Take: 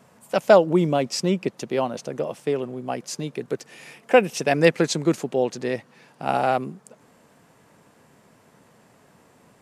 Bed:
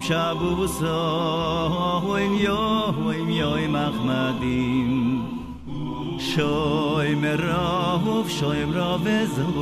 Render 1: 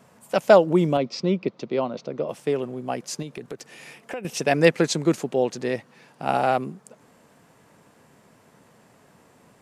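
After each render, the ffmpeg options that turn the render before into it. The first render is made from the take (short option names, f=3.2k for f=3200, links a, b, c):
-filter_complex "[0:a]asettb=1/sr,asplit=3[a][b][c];[a]atrim=end=0.974[d];[b]atrim=start=0.97:end=2.29,asetpts=PTS-STARTPTS,afade=t=in:d=0.004:c=qsin,afade=t=out:st=1.316:d=0.004:c=qsin,highpass=120,equalizer=f=810:t=q:w=4:g=-5,equalizer=f=1.7k:t=q:w=4:g=-9,equalizer=f=2.9k:t=q:w=4:g=-5,lowpass=f=4.6k:w=0.5412,lowpass=f=4.6k:w=1.3066[e];[c]atrim=start=2.286[f];[d][e]acrossfade=d=0.004:c1=hsin:c2=qsin[g];[g][f]acrossfade=d=0.004:c1=qsin:c2=hsin,asettb=1/sr,asplit=3[h][i][j];[h]atrim=end=3.224[k];[i]atrim=start=3.22:end=4.25,asetpts=PTS-STARTPTS,afade=t=in:d=0.004:c=qsin,afade=t=out:st=1.026:d=0.004:c=qsin,acompressor=threshold=-30dB:ratio=6:attack=3.2:release=140:knee=1:detection=peak[l];[j]atrim=start=4.246[m];[k][l]acrossfade=d=0.004:c1=hsin:c2=qsin[n];[n][m]acrossfade=d=0.004:c1=qsin:c2=hsin"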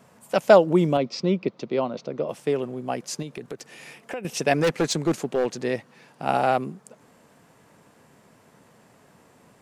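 -filter_complex "[0:a]asettb=1/sr,asplit=3[a][b][c];[a]atrim=end=4.534[d];[b]atrim=start=4.53:end=5.58,asetpts=PTS-STARTPTS,afade=t=in:d=0.004:c=qsin,afade=t=out:st=1.046:d=0.004:c=qsin,volume=17dB,asoftclip=hard,volume=-17dB[e];[c]atrim=start=5.576[f];[d][e]acrossfade=d=0.004:c1=hsin:c2=qsin[g];[g][f]acrossfade=d=0.004:c1=qsin:c2=hsin"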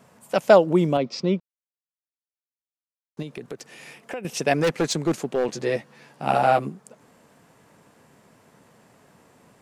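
-filter_complex "[0:a]asettb=1/sr,asplit=3[a][b][c];[a]atrim=end=5.474[d];[b]atrim=start=5.47:end=6.69,asetpts=PTS-STARTPTS,afade=t=in:d=0.004:c=qsin,afade=t=out:st=1.216:d=0.004:c=qsin,asplit=2[e][f];[f]adelay=14,volume=-3dB[g];[e][g]amix=inputs=2:normalize=0,atrim=end_sample=53802[h];[c]atrim=start=6.686[i];[d][h]acrossfade=d=0.004:c1=hsin:c2=qsin[j];[j][i]acrossfade=d=0.004:c1=qsin:c2=hsin,asplit=3[k][l][m];[k]atrim=end=1.4,asetpts=PTS-STARTPTS,afade=t=out:st=1.396:d=0.004:c=hsin[n];[l]atrim=start=1.4:end=3.17,asetpts=PTS-STARTPTS,volume=0[o];[m]atrim=start=3.17,asetpts=PTS-STARTPTS,afade=t=in:d=0.004:c=hsin[p];[n][o][p]concat=n=3:v=0:a=1"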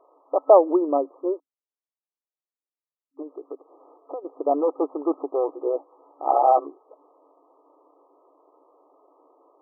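-af "afftfilt=real='re*between(b*sr/4096,270,1300)':imag='im*between(b*sr/4096,270,1300)':win_size=4096:overlap=0.75,adynamicequalizer=threshold=0.0178:dfrequency=840:dqfactor=2.8:tfrequency=840:tqfactor=2.8:attack=5:release=100:ratio=0.375:range=1.5:mode=boostabove:tftype=bell"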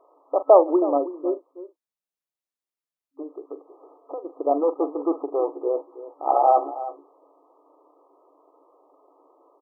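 -filter_complex "[0:a]asplit=2[a][b];[b]adelay=42,volume=-12.5dB[c];[a][c]amix=inputs=2:normalize=0,aecho=1:1:322:0.188"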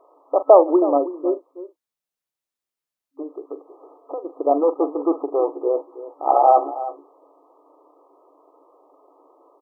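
-af "volume=3.5dB,alimiter=limit=-1dB:level=0:latency=1"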